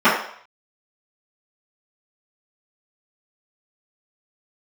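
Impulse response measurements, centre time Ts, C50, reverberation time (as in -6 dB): 41 ms, 4.0 dB, 0.60 s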